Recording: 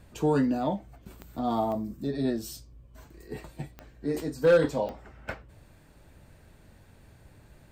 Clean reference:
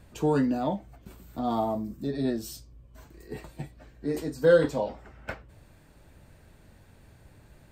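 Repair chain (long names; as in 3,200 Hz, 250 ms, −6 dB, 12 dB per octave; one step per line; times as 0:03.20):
clipped peaks rebuilt −14.5 dBFS
click removal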